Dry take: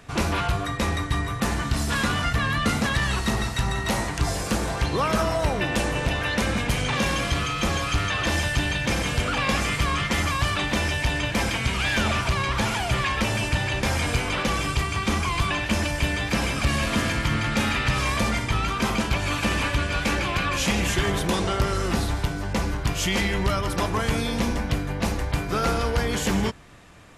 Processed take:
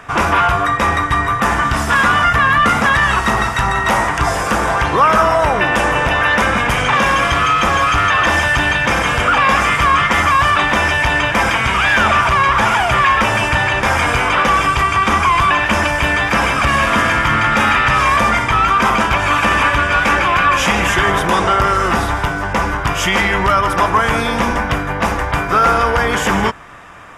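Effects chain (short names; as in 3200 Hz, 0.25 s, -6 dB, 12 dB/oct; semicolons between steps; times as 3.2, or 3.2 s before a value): bell 1200 Hz +14 dB 2.1 oct; notch 4200 Hz, Q 5.1; in parallel at +1 dB: limiter -10 dBFS, peak gain reduction 7.5 dB; on the sum: requantised 12-bit, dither none; gain -2.5 dB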